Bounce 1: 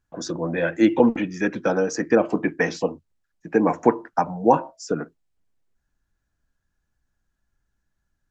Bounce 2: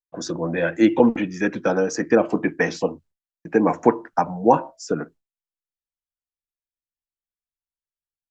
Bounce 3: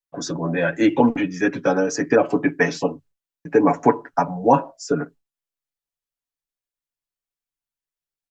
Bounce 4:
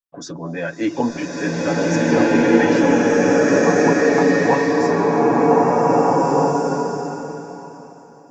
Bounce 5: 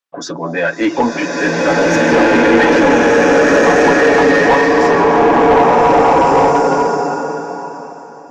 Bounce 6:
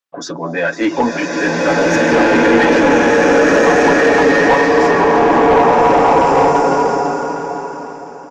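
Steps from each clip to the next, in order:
expander -43 dBFS; gain +1 dB
comb 7.1 ms, depth 78%
bloom reverb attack 1.85 s, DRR -9 dB; gain -4.5 dB
overdrive pedal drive 20 dB, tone 2600 Hz, clips at -1 dBFS
feedback echo 0.504 s, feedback 43%, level -12 dB; gain -1 dB

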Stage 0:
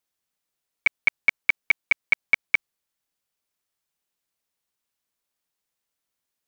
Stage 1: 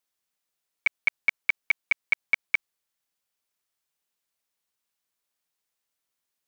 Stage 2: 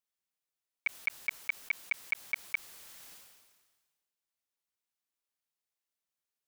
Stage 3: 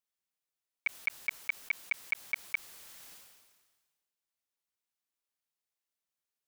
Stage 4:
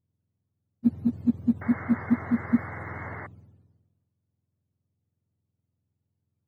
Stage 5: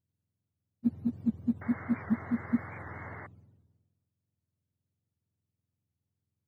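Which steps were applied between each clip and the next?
low shelf 470 Hz -4.5 dB; limiter -13 dBFS, peak gain reduction 3.5 dB
sustainer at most 40 dB/s; gain -9 dB
nothing audible
spectrum mirrored in octaves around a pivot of 730 Hz; painted sound noise, 1.61–3.27, 220–2200 Hz -48 dBFS; gain +8.5 dB
record warp 78 rpm, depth 160 cents; gain -6 dB

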